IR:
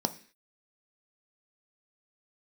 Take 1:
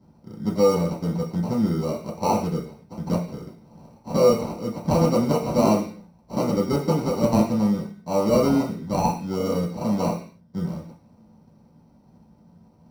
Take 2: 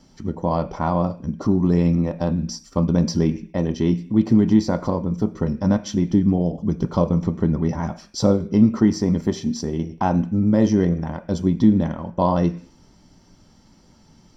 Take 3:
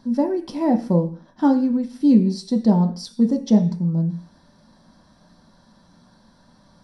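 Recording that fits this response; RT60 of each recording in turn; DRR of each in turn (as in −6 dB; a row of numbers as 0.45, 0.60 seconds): 2; 0.45, 0.45, 0.45 seconds; −4.5, 8.5, 3.5 decibels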